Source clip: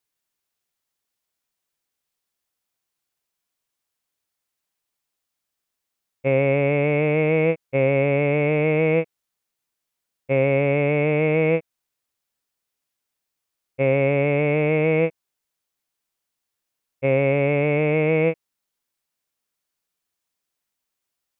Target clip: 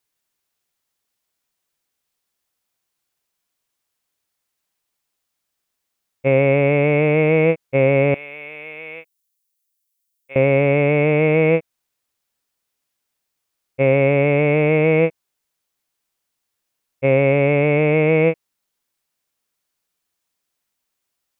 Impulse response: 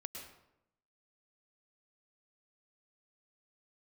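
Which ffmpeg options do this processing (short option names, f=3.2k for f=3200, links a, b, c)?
-filter_complex "[0:a]asettb=1/sr,asplit=3[a][b][c];[a]atrim=end=8.144[d];[b]atrim=start=8.14:end=10.36,asetpts=PTS-STARTPTS,afade=t=in:d=0.004:c=qsin,afade=t=out:st=2.216:d=0.004:c=qsin,aderivative[e];[c]atrim=start=10.356[f];[d][e]acrossfade=d=0.004:c1=hsin:c2=qsin[g];[g][f]acrossfade=d=0.004:c1=qsin:c2=hsin,volume=4dB"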